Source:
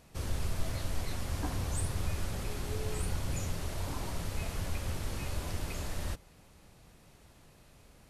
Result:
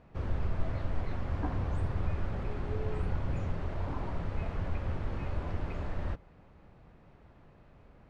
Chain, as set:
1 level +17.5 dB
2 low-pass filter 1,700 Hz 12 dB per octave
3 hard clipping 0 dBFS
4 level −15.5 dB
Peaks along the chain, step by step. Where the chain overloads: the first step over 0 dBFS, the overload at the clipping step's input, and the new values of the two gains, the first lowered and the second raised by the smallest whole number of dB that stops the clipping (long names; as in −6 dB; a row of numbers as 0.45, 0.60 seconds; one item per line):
−3.0, −3.5, −3.5, −19.0 dBFS
no step passes full scale